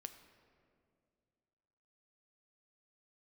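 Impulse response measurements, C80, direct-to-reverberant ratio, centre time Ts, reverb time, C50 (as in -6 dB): 11.5 dB, 8.0 dB, 17 ms, 2.3 s, 10.5 dB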